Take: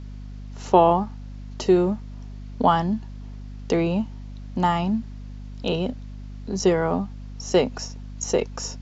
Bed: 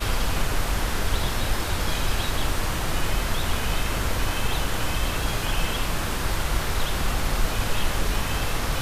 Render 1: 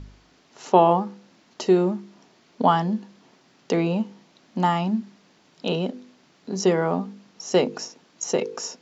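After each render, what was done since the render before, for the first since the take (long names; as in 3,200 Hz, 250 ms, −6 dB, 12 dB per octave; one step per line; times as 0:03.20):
hum removal 50 Hz, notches 10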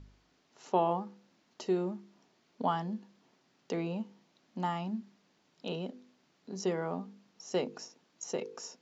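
level −12.5 dB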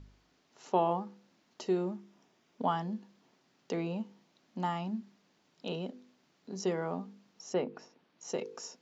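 0:01.96–0:02.82: notch filter 4,300 Hz, Q 9.2
0:07.53–0:08.23: low-pass filter 2,200 Hz → 4,200 Hz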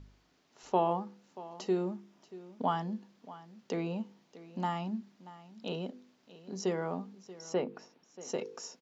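single-tap delay 633 ms −17.5 dB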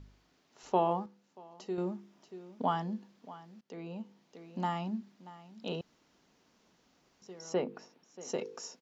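0:01.06–0:01.78: clip gain −7 dB
0:03.61–0:04.38: fade in, from −19 dB
0:05.81–0:07.22: fill with room tone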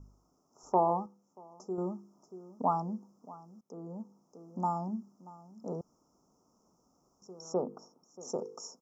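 Chebyshev band-stop filter 1,300–5,300 Hz, order 5
dynamic equaliser 830 Hz, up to +3 dB, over −44 dBFS, Q 1.3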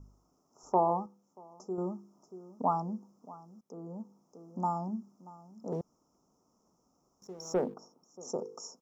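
0:05.72–0:07.74: leveller curve on the samples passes 1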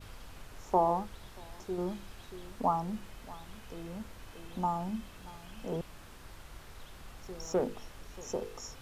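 mix in bed −25 dB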